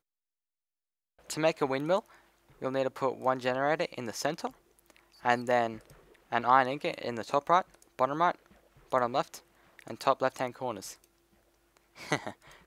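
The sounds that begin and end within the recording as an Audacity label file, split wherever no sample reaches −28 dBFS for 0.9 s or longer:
1.300000	10.770000	sound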